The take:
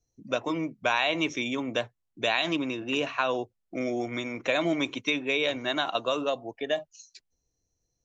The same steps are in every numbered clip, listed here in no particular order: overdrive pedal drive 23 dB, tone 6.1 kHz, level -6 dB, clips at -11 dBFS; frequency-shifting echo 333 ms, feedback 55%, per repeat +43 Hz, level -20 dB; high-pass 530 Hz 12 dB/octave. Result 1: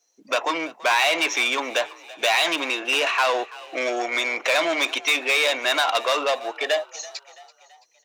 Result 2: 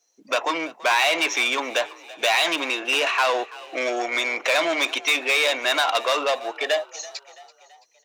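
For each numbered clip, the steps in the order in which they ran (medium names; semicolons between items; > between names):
overdrive pedal > high-pass > frequency-shifting echo; overdrive pedal > frequency-shifting echo > high-pass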